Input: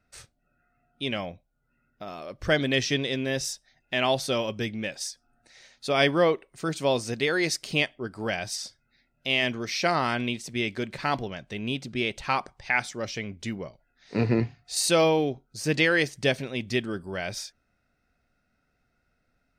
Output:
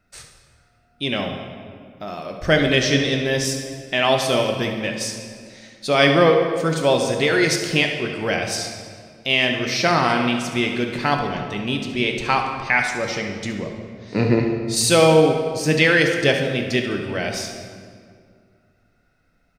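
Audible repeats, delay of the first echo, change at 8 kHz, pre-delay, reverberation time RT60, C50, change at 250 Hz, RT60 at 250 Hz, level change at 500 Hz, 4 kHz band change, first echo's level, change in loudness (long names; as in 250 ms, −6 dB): 1, 70 ms, +7.0 dB, 4 ms, 2.1 s, 4.5 dB, +7.5 dB, 2.7 s, +8.0 dB, +7.0 dB, −12.0 dB, +7.5 dB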